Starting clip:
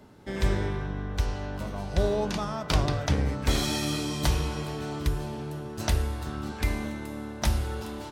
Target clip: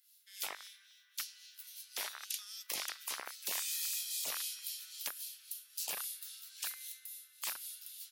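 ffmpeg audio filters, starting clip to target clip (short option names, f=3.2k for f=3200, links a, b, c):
-filter_complex "[0:a]acrossover=split=3800[a][b];[a]acrusher=bits=2:mix=0:aa=0.5[c];[b]acontrast=36[d];[c][d]amix=inputs=2:normalize=0,highpass=f=1.4k:t=q:w=1.9,equalizer=f=8.3k:t=o:w=0.34:g=-11,aexciter=amount=3.6:drive=5.5:freq=8.2k,dynaudnorm=f=250:g=13:m=3.5dB,acrossover=split=2100[e][f];[e]aeval=exprs='val(0)*(1-0.7/2+0.7/2*cos(2*PI*3.7*n/s))':c=same[g];[f]aeval=exprs='val(0)*(1-0.7/2-0.7/2*cos(2*PI*3.7*n/s))':c=same[h];[g][h]amix=inputs=2:normalize=0,afftfilt=real='re*lt(hypot(re,im),0.0355)':imag='im*lt(hypot(re,im),0.0355)':win_size=1024:overlap=0.75,volume=-1dB"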